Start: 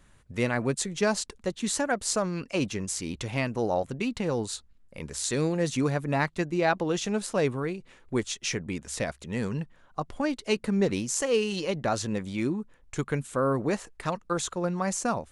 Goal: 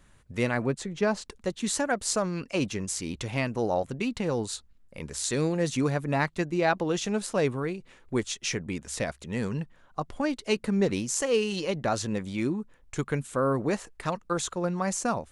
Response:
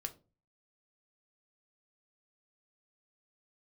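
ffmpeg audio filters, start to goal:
-filter_complex "[0:a]asettb=1/sr,asplit=3[a][b][c];[a]atrim=end=0.664[d];[b]atrim=start=0.66:end=1.26,asetpts=PTS-STARTPTS,afade=t=in:d=0.004:c=qsin,afade=t=out:st=0.596:d=0.004:c=qsin,lowpass=f=2.1k:p=1[e];[c]atrim=start=1.256[f];[d][e]acrossfade=d=0.004:c1=hsin:c2=qsin[g];[g][f]acrossfade=d=0.004:c1=qsin:c2=hsin"

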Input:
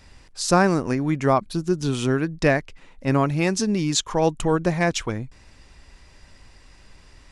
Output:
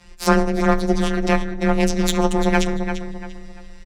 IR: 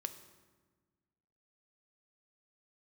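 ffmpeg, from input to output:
-filter_complex "[0:a]adynamicequalizer=threshold=0.00794:dfrequency=230:dqfactor=7.9:tfrequency=230:tqfactor=7.9:attack=5:release=100:ratio=0.375:range=2.5:mode=cutabove:tftype=bell,asplit=3[a][b][c];[b]asetrate=22050,aresample=44100,atempo=2,volume=-16dB[d];[c]asetrate=66075,aresample=44100,atempo=0.66742,volume=-13dB[e];[a][d][e]amix=inputs=3:normalize=0,asplit=2[f][g];[1:a]atrim=start_sample=2205,lowpass=6.4k,adelay=22[h];[g][h]afir=irnorm=-1:irlink=0,volume=2dB[i];[f][i]amix=inputs=2:normalize=0,atempo=1.9,afftfilt=real='hypot(re,im)*cos(PI*b)':imag='0':win_size=1024:overlap=0.75,aeval=exprs='max(val(0),0)':c=same,asplit=2[j][k];[k]adelay=343,lowpass=f=4k:p=1,volume=-8dB,asplit=2[l][m];[m]adelay=343,lowpass=f=4k:p=1,volume=0.34,asplit=2[n][o];[o]adelay=343,lowpass=f=4k:p=1,volume=0.34,asplit=2[p][q];[q]adelay=343,lowpass=f=4k:p=1,volume=0.34[r];[l][n][p][r]amix=inputs=4:normalize=0[s];[j][s]amix=inputs=2:normalize=0,afreqshift=18,volume=3.5dB"

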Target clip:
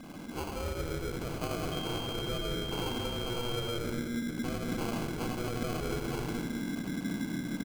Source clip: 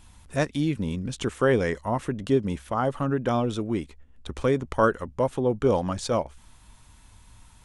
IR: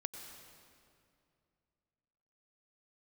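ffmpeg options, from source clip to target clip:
-filter_complex "[0:a]aeval=exprs='val(0)+0.5*0.0398*sgn(val(0))':c=same,equalizer=f=140:t=o:w=0.29:g=-6[a];[1:a]atrim=start_sample=2205,asetrate=66150,aresample=44100[b];[a][b]afir=irnorm=-1:irlink=0,asubboost=boost=4.5:cutoff=220,aeval=exprs='val(0)*sin(2*PI*1600*n/s)':c=same,acompressor=threshold=-26dB:ratio=6,aecho=1:1:96.21|236.2:0.631|0.355,acrusher=samples=24:mix=1:aa=0.000001,asettb=1/sr,asplit=3[c][d][e];[c]atrim=end=1.724[f];[d]atrim=start=1.72:end=3.78,asetpts=PTS-STARTPTS,afade=t=in:d=0.004:c=qsin,afade=t=out:st=2.056:d=0.004:c=qsin,aeval=exprs='val(0)+0.0178*sin(2*PI*3200*n/s)':c=same[g];[e]atrim=start=3.776[h];[f][g]acrossfade=d=0.004:c1=hsin:c2=qsin[i];[i][h]acrossfade=d=0.004:c1=qsin:c2=hsin,volume=-5dB"

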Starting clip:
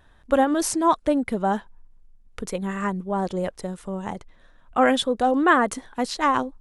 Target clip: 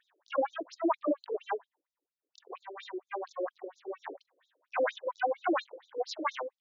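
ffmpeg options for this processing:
-filter_complex "[0:a]asplit=2[a][b];[b]asetrate=88200,aresample=44100,atempo=0.5,volume=-6dB[c];[a][c]amix=inputs=2:normalize=0,lowshelf=f=300:g=10,afftfilt=real='re*between(b*sr/1024,390*pow(5200/390,0.5+0.5*sin(2*PI*4.3*pts/sr))/1.41,390*pow(5200/390,0.5+0.5*sin(2*PI*4.3*pts/sr))*1.41)':imag='im*between(b*sr/1024,390*pow(5200/390,0.5+0.5*sin(2*PI*4.3*pts/sr))/1.41,390*pow(5200/390,0.5+0.5*sin(2*PI*4.3*pts/sr))*1.41)':win_size=1024:overlap=0.75,volume=-7dB"

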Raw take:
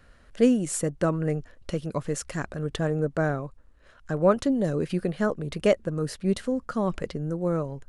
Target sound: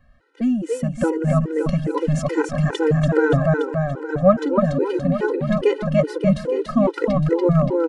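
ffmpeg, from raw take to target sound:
-filter_complex "[0:a]dynaudnorm=f=510:g=3:m=13.5dB,aemphasis=mode=reproduction:type=75fm,asplit=2[a][b];[b]aecho=0:1:287|574|861|1148|1435|1722|2009|2296:0.668|0.394|0.233|0.137|0.081|0.0478|0.0282|0.0166[c];[a][c]amix=inputs=2:normalize=0,afftfilt=real='re*gt(sin(2*PI*2.4*pts/sr)*(1-2*mod(floor(b*sr/1024/260),2)),0)':imag='im*gt(sin(2*PI*2.4*pts/sr)*(1-2*mod(floor(b*sr/1024/260),2)),0)':win_size=1024:overlap=0.75"

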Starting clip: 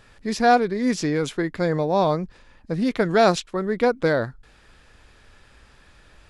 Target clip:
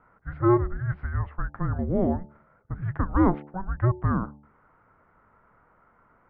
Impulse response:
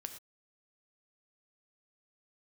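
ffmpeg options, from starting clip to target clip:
-af "highpass=f=290:t=q:w=0.5412,highpass=f=290:t=q:w=1.307,lowpass=f=2k:t=q:w=0.5176,lowpass=f=2k:t=q:w=0.7071,lowpass=f=2k:t=q:w=1.932,afreqshift=-370,bandreject=f=73.12:t=h:w=4,bandreject=f=146.24:t=h:w=4,bandreject=f=219.36:t=h:w=4,bandreject=f=292.48:t=h:w=4,bandreject=f=365.6:t=h:w=4,bandreject=f=438.72:t=h:w=4,bandreject=f=511.84:t=h:w=4,bandreject=f=584.96:t=h:w=4,bandreject=f=658.08:t=h:w=4,bandreject=f=731.2:t=h:w=4,bandreject=f=804.32:t=h:w=4,bandreject=f=877.44:t=h:w=4,volume=-2.5dB"

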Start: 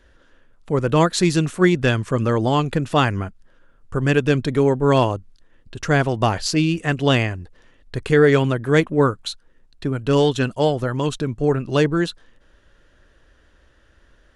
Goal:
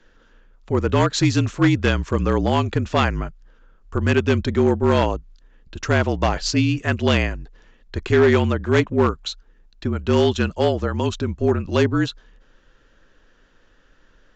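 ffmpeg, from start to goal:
-af "afreqshift=-41,asoftclip=type=hard:threshold=-9dB,aresample=16000,aresample=44100"

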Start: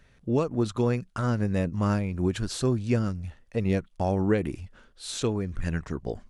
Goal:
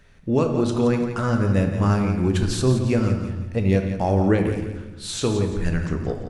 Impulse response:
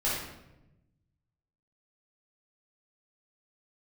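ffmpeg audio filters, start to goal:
-filter_complex "[0:a]aecho=1:1:171|342|513|684:0.335|0.117|0.041|0.0144,asplit=2[a][b];[1:a]atrim=start_sample=2205,adelay=10[c];[b][c]afir=irnorm=-1:irlink=0,volume=-14dB[d];[a][d]amix=inputs=2:normalize=0,volume=4dB"

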